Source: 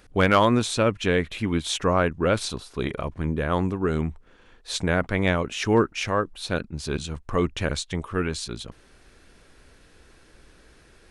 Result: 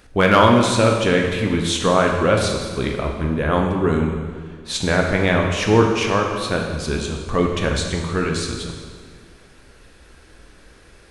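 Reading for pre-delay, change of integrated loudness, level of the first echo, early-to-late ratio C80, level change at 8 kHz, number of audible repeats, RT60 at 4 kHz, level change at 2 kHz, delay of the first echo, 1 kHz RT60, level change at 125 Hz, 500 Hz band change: 11 ms, +6.0 dB, no echo, 5.0 dB, +5.5 dB, no echo, 1.5 s, +6.0 dB, no echo, 1.7 s, +5.5 dB, +6.0 dB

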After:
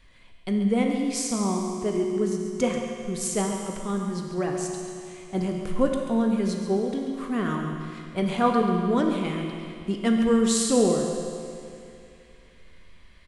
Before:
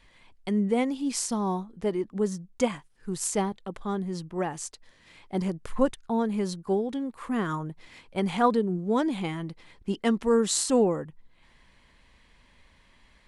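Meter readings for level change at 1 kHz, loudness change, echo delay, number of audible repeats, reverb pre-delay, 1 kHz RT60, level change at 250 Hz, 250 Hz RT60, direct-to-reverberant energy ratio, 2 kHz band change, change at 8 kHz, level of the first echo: +1.0 dB, +2.5 dB, 137 ms, 1, 13 ms, 2.6 s, +4.0 dB, 2.6 s, 1.0 dB, +2.5 dB, +2.0 dB, -10.0 dB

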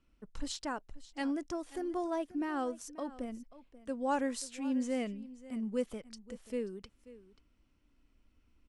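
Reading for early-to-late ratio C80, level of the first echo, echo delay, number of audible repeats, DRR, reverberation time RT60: no reverb, -17.5 dB, 535 ms, 1, no reverb, no reverb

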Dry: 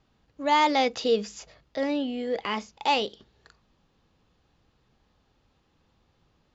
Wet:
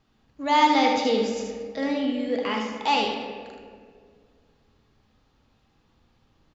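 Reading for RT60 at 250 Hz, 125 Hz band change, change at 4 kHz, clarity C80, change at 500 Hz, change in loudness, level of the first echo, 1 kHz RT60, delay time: 2.4 s, no reading, +2.0 dB, 5.0 dB, +1.5 dB, +2.5 dB, -6.0 dB, 1.7 s, 77 ms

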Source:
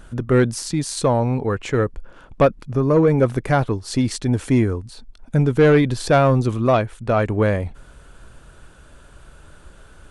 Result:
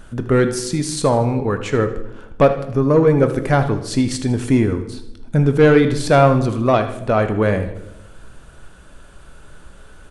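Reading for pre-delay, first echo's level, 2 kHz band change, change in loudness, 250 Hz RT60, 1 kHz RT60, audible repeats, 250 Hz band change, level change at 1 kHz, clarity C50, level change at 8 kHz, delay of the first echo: 4 ms, -14.0 dB, +2.5 dB, +2.0 dB, 1.2 s, 0.75 s, 3, +2.0 dB, +2.5 dB, 10.0 dB, +2.0 dB, 78 ms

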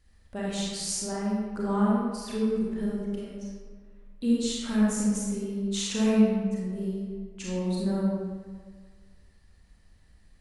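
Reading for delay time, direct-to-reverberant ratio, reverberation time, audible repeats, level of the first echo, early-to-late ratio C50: no echo, -6.0 dB, 1.7 s, no echo, no echo, -2.5 dB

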